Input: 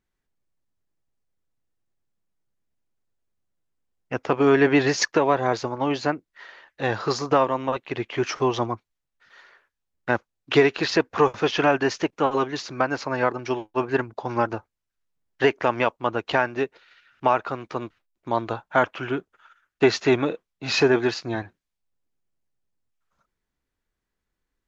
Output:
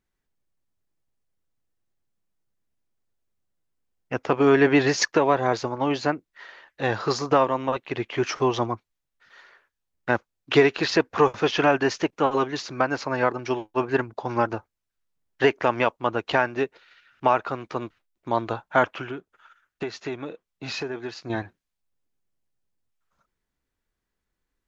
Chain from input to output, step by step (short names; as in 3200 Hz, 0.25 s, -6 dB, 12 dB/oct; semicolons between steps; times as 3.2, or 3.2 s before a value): 19.01–21.3 compressor 3:1, threshold -33 dBFS, peak gain reduction 15.5 dB